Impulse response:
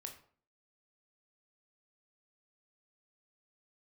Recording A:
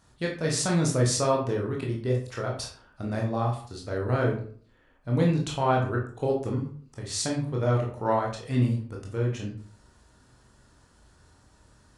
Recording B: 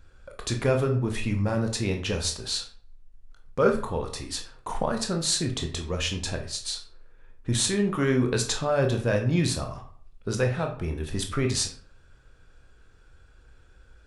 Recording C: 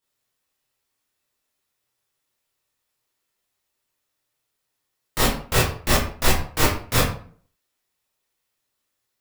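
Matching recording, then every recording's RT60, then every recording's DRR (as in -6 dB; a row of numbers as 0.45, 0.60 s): B; 0.50, 0.50, 0.50 s; -1.5, 3.0, -9.5 dB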